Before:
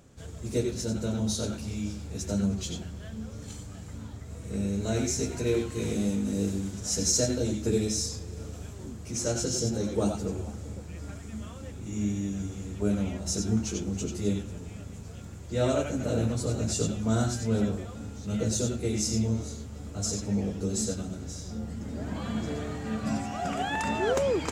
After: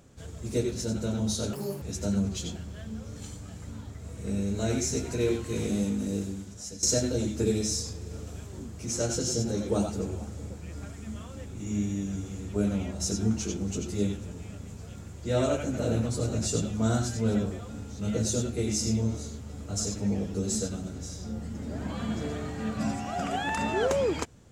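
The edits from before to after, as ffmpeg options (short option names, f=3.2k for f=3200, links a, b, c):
-filter_complex "[0:a]asplit=4[a][b][c][d];[a]atrim=end=1.534[e];[b]atrim=start=1.53:end=2.08,asetpts=PTS-STARTPTS,asetrate=84231,aresample=44100[f];[c]atrim=start=2.076:end=7.09,asetpts=PTS-STARTPTS,afade=t=out:st=4.074:d=0.94:silence=0.158489[g];[d]atrim=start=7.09,asetpts=PTS-STARTPTS,afade=t=in:d=0.004:c=hsin:silence=0.158489[h];[e][f]acrossfade=d=0.004:c1=hsin:c2=hsin[i];[g][h]concat=n=2:v=0:a=1[j];[i][j]acrossfade=d=0.004:c1=hsin:c2=hsin"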